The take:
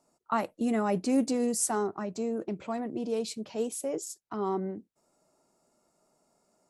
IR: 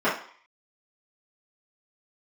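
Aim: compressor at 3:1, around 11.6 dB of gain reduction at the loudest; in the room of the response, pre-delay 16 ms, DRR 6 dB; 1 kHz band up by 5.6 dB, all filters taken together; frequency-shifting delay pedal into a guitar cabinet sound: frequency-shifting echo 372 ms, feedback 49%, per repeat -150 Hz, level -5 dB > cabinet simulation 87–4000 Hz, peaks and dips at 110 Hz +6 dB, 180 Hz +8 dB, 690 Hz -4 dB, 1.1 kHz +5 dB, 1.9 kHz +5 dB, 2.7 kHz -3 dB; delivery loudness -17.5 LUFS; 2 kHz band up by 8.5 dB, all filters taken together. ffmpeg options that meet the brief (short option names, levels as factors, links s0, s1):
-filter_complex "[0:a]equalizer=f=1000:t=o:g=3.5,equalizer=f=2000:t=o:g=6.5,acompressor=threshold=0.0158:ratio=3,asplit=2[s0][s1];[1:a]atrim=start_sample=2205,adelay=16[s2];[s1][s2]afir=irnorm=-1:irlink=0,volume=0.0708[s3];[s0][s3]amix=inputs=2:normalize=0,asplit=7[s4][s5][s6][s7][s8][s9][s10];[s5]adelay=372,afreqshift=-150,volume=0.562[s11];[s6]adelay=744,afreqshift=-300,volume=0.275[s12];[s7]adelay=1116,afreqshift=-450,volume=0.135[s13];[s8]adelay=1488,afreqshift=-600,volume=0.0661[s14];[s9]adelay=1860,afreqshift=-750,volume=0.0324[s15];[s10]adelay=2232,afreqshift=-900,volume=0.0158[s16];[s4][s11][s12][s13][s14][s15][s16]amix=inputs=7:normalize=0,highpass=87,equalizer=f=110:t=q:w=4:g=6,equalizer=f=180:t=q:w=4:g=8,equalizer=f=690:t=q:w=4:g=-4,equalizer=f=1100:t=q:w=4:g=5,equalizer=f=1900:t=q:w=4:g=5,equalizer=f=2700:t=q:w=4:g=-3,lowpass=f=4000:w=0.5412,lowpass=f=4000:w=1.3066,volume=7.94"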